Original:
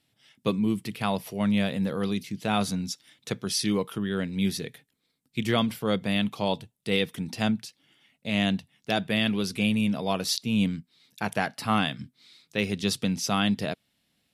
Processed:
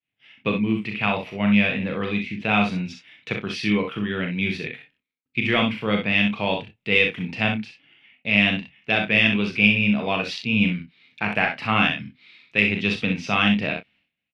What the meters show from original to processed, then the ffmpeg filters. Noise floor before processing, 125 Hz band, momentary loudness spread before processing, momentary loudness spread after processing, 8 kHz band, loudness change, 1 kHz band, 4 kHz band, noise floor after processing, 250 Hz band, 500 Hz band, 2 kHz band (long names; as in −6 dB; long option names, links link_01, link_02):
−75 dBFS, +3.0 dB, 9 LU, 12 LU, below −10 dB, +6.0 dB, +4.0 dB, +4.0 dB, −83 dBFS, +3.0 dB, +3.0 dB, +12.0 dB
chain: -filter_complex "[0:a]agate=range=-33dB:threshold=-60dB:ratio=3:detection=peak,lowpass=frequency=2500:width_type=q:width=4.2,aeval=exprs='0.75*(cos(1*acos(clip(val(0)/0.75,-1,1)))-cos(1*PI/2))+0.0119*(cos(4*acos(clip(val(0)/0.75,-1,1)))-cos(4*PI/2))':channel_layout=same,asplit=2[link_01][link_02];[link_02]adelay=28,volume=-12dB[link_03];[link_01][link_03]amix=inputs=2:normalize=0,asplit=2[link_04][link_05];[link_05]aecho=0:1:39|63:0.473|0.473[link_06];[link_04][link_06]amix=inputs=2:normalize=0,volume=1dB"